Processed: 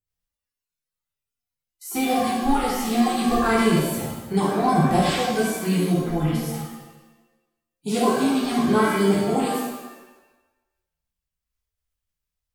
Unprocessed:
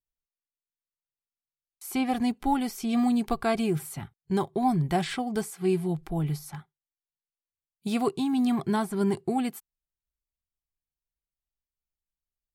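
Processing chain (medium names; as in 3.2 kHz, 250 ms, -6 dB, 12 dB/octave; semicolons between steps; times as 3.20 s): coarse spectral quantiser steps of 30 dB; pitch-shifted reverb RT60 1 s, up +7 st, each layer -8 dB, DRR -7.5 dB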